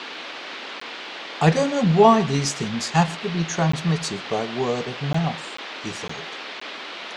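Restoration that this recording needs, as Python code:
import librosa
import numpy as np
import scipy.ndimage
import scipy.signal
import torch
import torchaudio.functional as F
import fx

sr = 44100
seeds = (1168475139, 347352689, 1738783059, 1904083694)

y = fx.fix_declick_ar(x, sr, threshold=6.5)
y = fx.fix_interpolate(y, sr, at_s=(0.8, 3.72, 5.13, 5.57, 6.08, 6.6), length_ms=14.0)
y = fx.noise_reduce(y, sr, print_start_s=0.81, print_end_s=1.31, reduce_db=30.0)
y = fx.fix_echo_inverse(y, sr, delay_ms=128, level_db=-22.5)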